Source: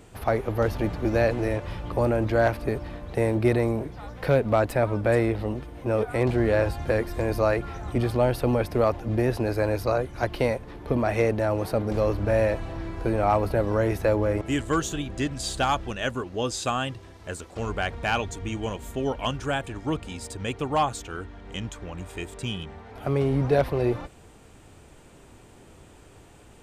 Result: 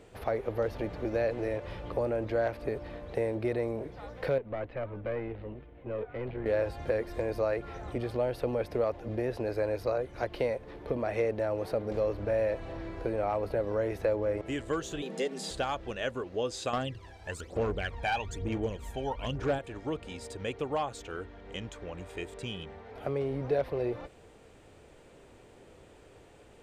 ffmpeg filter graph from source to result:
-filter_complex "[0:a]asettb=1/sr,asplit=3[a][b][c];[a]atrim=end=4.384[d];[b]atrim=start=4.38:end=6.46,asetpts=PTS-STARTPTS,afade=t=in:d=0.004:c=qsin,afade=t=out:st=2.076:d=0.004:c=qsin,lowpass=f=3k:w=0.5412,lowpass=f=3k:w=1.3066,equalizer=f=780:w=0.32:g=-5.5,aeval=exprs='(tanh(8.91*val(0)+0.7)-tanh(0.7))/8.91':c=same[e];[c]atrim=start=6.456[f];[d][e]acrossfade=d=0.004:c1=hsin:c2=qsin[g];[g][f]acrossfade=d=0.004:c1=qsin:c2=hsin,asettb=1/sr,asplit=3[h][i][j];[h]atrim=end=15.024[k];[i]atrim=start=15.02:end=15.51,asetpts=PTS-STARTPTS,afade=t=in:d=0.004:c=qsin,afade=t=out:st=0.486:d=0.004:c=qsin,acrossover=split=3000[l][m];[m]acompressor=threshold=-36dB:ratio=4:attack=1:release=60[n];[l][n]amix=inputs=2:normalize=0,highshelf=f=4.3k:g=9.5,afreqshift=130[o];[j]atrim=start=15.506[p];[k][o]acrossfade=d=0.004:c1=hsin:c2=qsin[q];[q][p]acrossfade=d=0.004:c1=qsin:c2=hsin,asettb=1/sr,asplit=3[r][s][t];[r]atrim=end=16.734[u];[s]atrim=start=16.73:end=19.59,asetpts=PTS-STARTPTS,afade=t=in:d=0.004:c=qsin,afade=t=out:st=2.856:d=0.004:c=qsin,aphaser=in_gain=1:out_gain=1:delay=1.3:decay=0.72:speed=1.1:type=sinusoidal,volume=14.5dB,asoftclip=hard,volume=-14.5dB[v];[t]atrim=start=19.586[w];[u][v]acrossfade=d=0.004:c1=hsin:c2=qsin[x];[x][w]acrossfade=d=0.004:c1=qsin:c2=hsin,highshelf=f=8.9k:g=-5,acompressor=threshold=-28dB:ratio=2,equalizer=f=500:t=o:w=1:g=9,equalizer=f=2k:t=o:w=1:g=4,equalizer=f=4k:t=o:w=1:g=3,volume=-8dB"

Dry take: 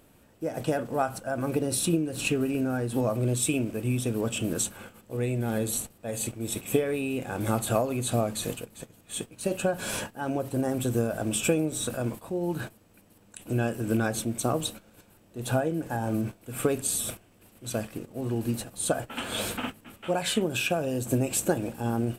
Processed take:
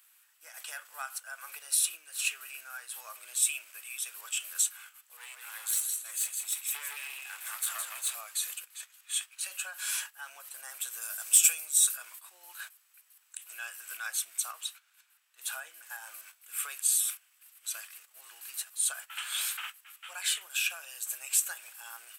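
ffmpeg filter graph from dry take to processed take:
-filter_complex "[0:a]asettb=1/sr,asplit=3[a][b][c];[a]atrim=end=5.174[d];[b]atrim=start=5.17:end=8.15,asetpts=PTS-STARTPTS,afade=t=in:d=0.004:c=qsin,afade=t=out:st=2.976:d=0.004:c=qsin,aecho=1:1:163|326|489:0.562|0.146|0.038,atrim=end_sample=131418,aeval=exprs='clip(val(0),-1,0.0316)':c=same[e];[c]atrim=start=8.146[f];[d][e]acrossfade=d=0.004:c1=hsin:c2=qsin[g];[g][f]acrossfade=d=0.004:c1=qsin:c2=hsin,asettb=1/sr,asplit=3[h][i][j];[h]atrim=end=8.694[k];[i]atrim=start=8.69:end=9.47,asetpts=PTS-STARTPTS,afade=t=in:d=0.004:c=qsin,afade=t=out:st=0.776:d=0.004:c=qsin,highpass=f=990:p=1,highshelf=f=6.7k:g=-9,acontrast=75[l];[j]atrim=start=9.466[m];[k][l]acrossfade=d=0.004:c1=hsin:c2=qsin[n];[n][m]acrossfade=d=0.004:c1=qsin:c2=hsin,asettb=1/sr,asplit=3[o][p][q];[o]atrim=end=11.014[r];[p]atrim=start=11.01:end=11.96,asetpts=PTS-STARTPTS,afade=t=in:d=0.004:c=qsin,afade=t=out:st=0.946:d=0.004:c=qsin,agate=range=-33dB:threshold=-32dB:ratio=3:release=100:detection=peak,bass=f=250:g=-3,treble=f=4k:g=10[s];[q]atrim=start=11.956[t];[r][s]acrossfade=d=0.004:c1=hsin:c2=qsin[u];[u][t]acrossfade=d=0.004:c1=qsin:c2=hsin,asettb=1/sr,asplit=3[v][w][x];[v]atrim=end=14.514[y];[w]atrim=start=14.51:end=15.38,asetpts=PTS-STARTPTS,afade=t=in:d=0.004:c=qsin,afade=t=out:st=0.866:d=0.004:c=qsin,highpass=f=930:p=1,aemphasis=mode=reproduction:type=cd[z];[x]atrim=start=15.376[aa];[y][z]acrossfade=d=0.004:c1=hsin:c2=qsin[ab];[ab][aa]acrossfade=d=0.004:c1=qsin:c2=hsin,highpass=f=1.3k:w=0.5412,highpass=f=1.3k:w=1.3066,highshelf=f=7.3k:g=8.5,acontrast=58,volume=-8.5dB"

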